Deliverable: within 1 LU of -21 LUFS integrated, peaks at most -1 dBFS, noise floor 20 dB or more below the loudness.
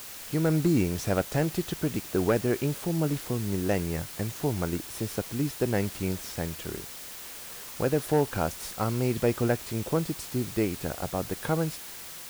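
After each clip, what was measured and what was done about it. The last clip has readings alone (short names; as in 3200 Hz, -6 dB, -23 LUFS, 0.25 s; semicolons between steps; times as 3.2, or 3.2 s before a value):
clipped 0.3%; flat tops at -15.5 dBFS; noise floor -42 dBFS; noise floor target -50 dBFS; loudness -29.5 LUFS; peak -15.5 dBFS; loudness target -21.0 LUFS
-> clip repair -15.5 dBFS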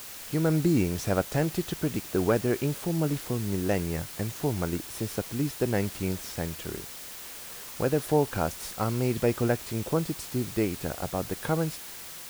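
clipped 0.0%; noise floor -42 dBFS; noise floor target -49 dBFS
-> denoiser 7 dB, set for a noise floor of -42 dBFS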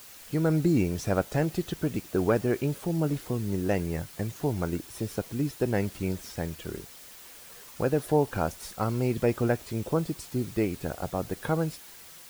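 noise floor -48 dBFS; noise floor target -50 dBFS
-> denoiser 6 dB, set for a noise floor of -48 dBFS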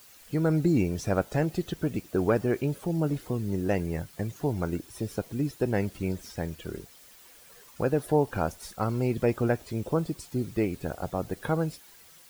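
noise floor -53 dBFS; loudness -29.5 LUFS; peak -12.0 dBFS; loudness target -21.0 LUFS
-> gain +8.5 dB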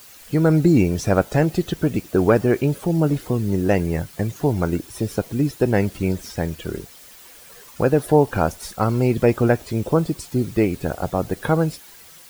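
loudness -21.0 LUFS; peak -3.5 dBFS; noise floor -45 dBFS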